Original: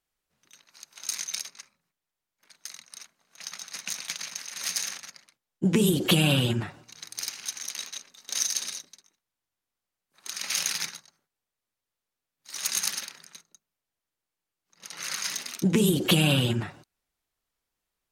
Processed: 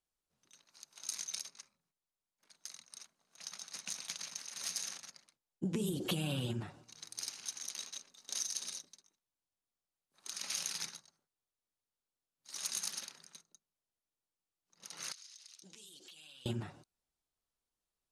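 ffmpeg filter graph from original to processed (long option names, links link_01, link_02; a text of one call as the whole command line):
ffmpeg -i in.wav -filter_complex "[0:a]asettb=1/sr,asplit=3[link_01][link_02][link_03];[link_01]atrim=end=15.124[link_04];[link_02]atrim=start=15.12:end=16.46,asetpts=PTS-STARTPTS,afade=type=in:duration=0.004:curve=qsin,afade=type=out:start_time=1.336:duration=0.004:curve=qsin,bandpass=frequency=4900:width_type=q:width=1.2,acompressor=threshold=-43dB:ratio=16:attack=3.2:release=140:knee=1:detection=peak[link_05];[link_03]atrim=start=16.456[link_06];[link_04][link_05]acrossfade=duration=0.004:curve1=hsin:curve2=qsin[link_07];[link_07][link_06]acrossfade=duration=0.004:curve1=qsin:curve2=hsin,lowpass=frequency=12000:width=0.5412,lowpass=frequency=12000:width=1.3066,equalizer=frequency=2000:width_type=o:width=1.2:gain=-6,acompressor=threshold=-28dB:ratio=3,volume=-6.5dB" out.wav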